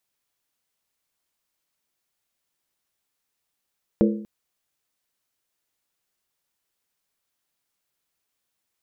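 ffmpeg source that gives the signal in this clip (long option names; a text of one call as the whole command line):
ffmpeg -f lavfi -i "aevalsrc='0.2*pow(10,-3*t/0.6)*sin(2*PI*212*t)+0.141*pow(10,-3*t/0.475)*sin(2*PI*337.9*t)+0.1*pow(10,-3*t/0.411)*sin(2*PI*452.8*t)+0.0708*pow(10,-3*t/0.396)*sin(2*PI*486.8*t)+0.0501*pow(10,-3*t/0.368)*sin(2*PI*562.4*t)':duration=0.24:sample_rate=44100" out.wav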